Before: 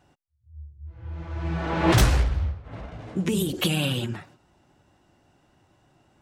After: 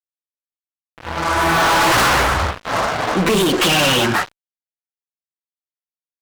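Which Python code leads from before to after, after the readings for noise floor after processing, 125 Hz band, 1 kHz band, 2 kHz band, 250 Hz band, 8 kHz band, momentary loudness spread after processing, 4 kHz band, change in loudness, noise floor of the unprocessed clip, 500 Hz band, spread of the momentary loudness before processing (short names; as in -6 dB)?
under -85 dBFS, 0.0 dB, +16.5 dB, +15.5 dB, +6.0 dB, +11.5 dB, 8 LU, +12.5 dB, +9.5 dB, -65 dBFS, +11.5 dB, 20 LU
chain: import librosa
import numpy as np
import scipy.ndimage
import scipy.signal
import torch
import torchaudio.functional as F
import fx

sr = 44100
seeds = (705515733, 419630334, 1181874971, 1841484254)

y = fx.filter_sweep_bandpass(x, sr, from_hz=600.0, to_hz=1200.0, start_s=0.63, end_s=1.19, q=1.4)
y = fx.fuzz(y, sr, gain_db=49.0, gate_db=-54.0)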